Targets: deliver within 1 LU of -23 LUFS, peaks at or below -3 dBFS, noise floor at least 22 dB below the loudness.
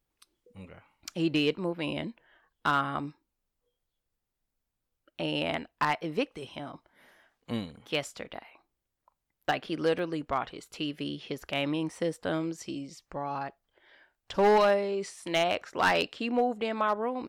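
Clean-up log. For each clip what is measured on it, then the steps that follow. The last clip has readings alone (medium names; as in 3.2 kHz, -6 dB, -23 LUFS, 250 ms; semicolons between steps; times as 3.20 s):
clipped samples 0.3%; clipping level -17.5 dBFS; dropouts 1; longest dropout 1.1 ms; loudness -30.5 LUFS; peak level -17.5 dBFS; loudness target -23.0 LUFS
-> clip repair -17.5 dBFS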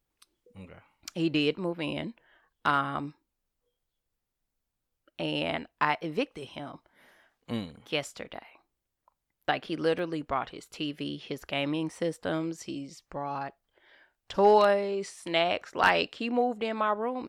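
clipped samples 0.0%; dropouts 1; longest dropout 1.1 ms
-> interpolate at 9.99 s, 1.1 ms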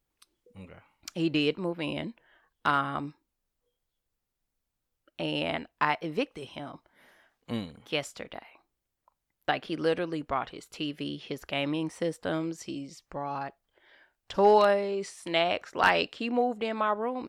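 dropouts 0; loudness -29.5 LUFS; peak level -8.5 dBFS; loudness target -23.0 LUFS
-> trim +6.5 dB; peak limiter -3 dBFS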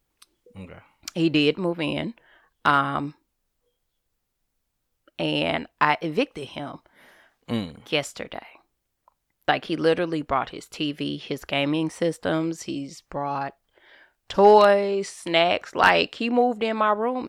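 loudness -23.0 LUFS; peak level -3.0 dBFS; noise floor -78 dBFS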